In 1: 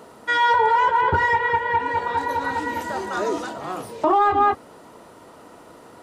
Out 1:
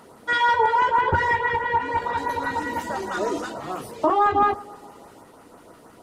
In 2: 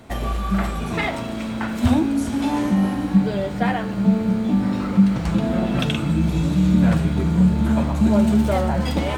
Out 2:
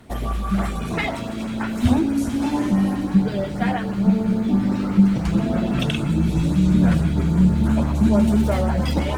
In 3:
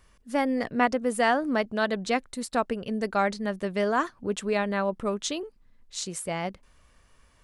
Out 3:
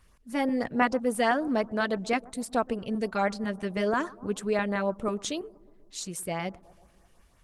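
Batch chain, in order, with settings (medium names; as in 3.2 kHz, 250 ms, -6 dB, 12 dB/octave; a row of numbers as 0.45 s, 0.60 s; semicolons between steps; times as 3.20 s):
bucket-brigade echo 122 ms, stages 1024, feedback 67%, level -22 dB; LFO notch saw up 6.1 Hz 350–4700 Hz; Opus 20 kbps 48 kHz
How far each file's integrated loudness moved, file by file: -1.5 LU, 0.0 LU, -1.5 LU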